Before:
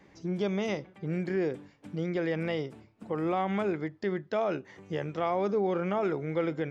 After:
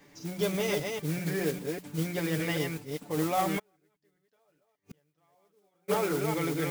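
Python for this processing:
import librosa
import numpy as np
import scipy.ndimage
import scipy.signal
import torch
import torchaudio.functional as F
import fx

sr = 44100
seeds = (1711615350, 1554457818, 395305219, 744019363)

y = fx.reverse_delay(x, sr, ms=198, wet_db=-3.5)
y = fx.high_shelf(y, sr, hz=4200.0, db=11.5)
y = fx.hum_notches(y, sr, base_hz=60, count=3)
y = y + 0.69 * np.pad(y, (int(6.9 * sr / 1000.0), 0))[:len(y)]
y = fx.mod_noise(y, sr, seeds[0], snr_db=13)
y = fx.gate_flip(y, sr, shuts_db=-31.0, range_db=-41, at=(3.58, 5.88), fade=0.02)
y = y * 10.0 ** (-2.0 / 20.0)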